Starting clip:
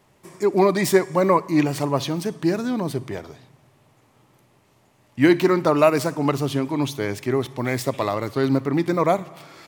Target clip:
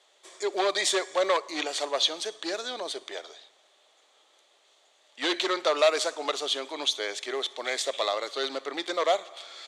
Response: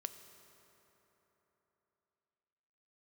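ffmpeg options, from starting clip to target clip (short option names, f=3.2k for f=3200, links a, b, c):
-af "volume=12.5dB,asoftclip=hard,volume=-12.5dB,aexciter=amount=3.1:drive=4.9:freq=3.7k,highpass=f=490:w=0.5412,highpass=f=490:w=1.3066,equalizer=f=960:t=q:w=4:g=-7,equalizer=f=3.4k:t=q:w=4:g=9,equalizer=f=5.2k:t=q:w=4:g=-8,lowpass=f=6.8k:w=0.5412,lowpass=f=6.8k:w=1.3066,volume=-2dB"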